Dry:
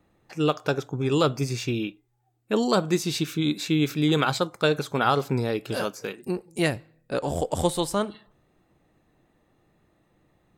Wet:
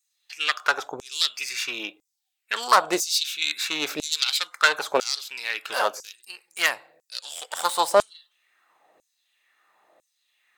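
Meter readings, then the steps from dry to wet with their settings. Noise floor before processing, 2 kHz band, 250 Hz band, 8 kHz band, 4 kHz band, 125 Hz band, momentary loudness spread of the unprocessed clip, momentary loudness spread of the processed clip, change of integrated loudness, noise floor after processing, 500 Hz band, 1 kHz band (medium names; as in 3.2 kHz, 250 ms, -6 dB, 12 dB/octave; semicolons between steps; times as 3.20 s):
-68 dBFS, +7.0 dB, -13.5 dB, +7.0 dB, +7.0 dB, -26.0 dB, 9 LU, 16 LU, +1.5 dB, -79 dBFS, -3.0 dB, +4.0 dB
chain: self-modulated delay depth 0.11 ms; LFO high-pass saw down 1 Hz 530–7100 Hz; trim +5 dB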